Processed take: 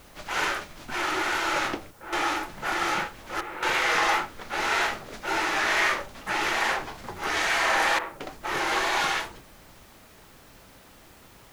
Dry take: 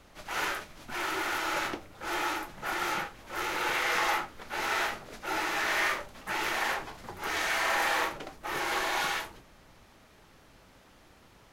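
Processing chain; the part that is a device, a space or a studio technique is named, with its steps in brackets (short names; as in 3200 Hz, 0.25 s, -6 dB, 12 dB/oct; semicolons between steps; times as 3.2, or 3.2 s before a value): worn cassette (LPF 9500 Hz 12 dB/oct; wow and flutter; level dips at 1.91/3.41/7.99, 0.213 s -8 dB; white noise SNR 30 dB); gain +5 dB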